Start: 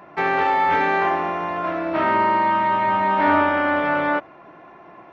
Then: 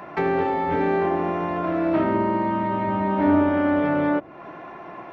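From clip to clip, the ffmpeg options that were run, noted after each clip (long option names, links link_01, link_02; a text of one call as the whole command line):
ffmpeg -i in.wav -filter_complex "[0:a]acrossover=split=490[link_01][link_02];[link_02]acompressor=threshold=-34dB:ratio=10[link_03];[link_01][link_03]amix=inputs=2:normalize=0,volume=6dB" out.wav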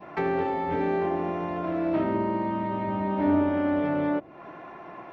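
ffmpeg -i in.wav -af "adynamicequalizer=threshold=0.0112:dfrequency=1400:dqfactor=1.2:tfrequency=1400:tqfactor=1.2:attack=5:release=100:ratio=0.375:range=2:mode=cutabove:tftype=bell,volume=-4dB" out.wav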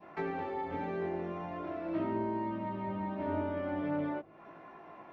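ffmpeg -i in.wav -af "flanger=delay=18:depth=4.5:speed=0.44,volume=-6dB" out.wav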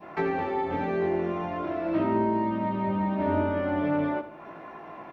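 ffmpeg -i in.wav -af "aecho=1:1:77|154|231|308|385:0.224|0.107|0.0516|0.0248|0.0119,volume=8.5dB" out.wav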